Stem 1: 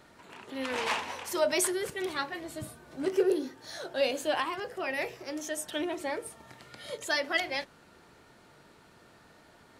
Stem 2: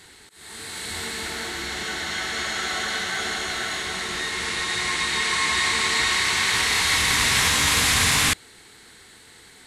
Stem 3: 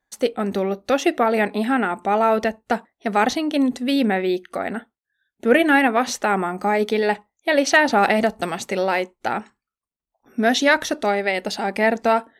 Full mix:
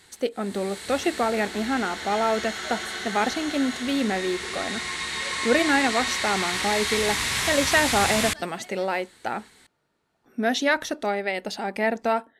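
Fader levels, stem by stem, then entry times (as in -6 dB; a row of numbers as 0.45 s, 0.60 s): -16.0 dB, -6.0 dB, -5.5 dB; 1.25 s, 0.00 s, 0.00 s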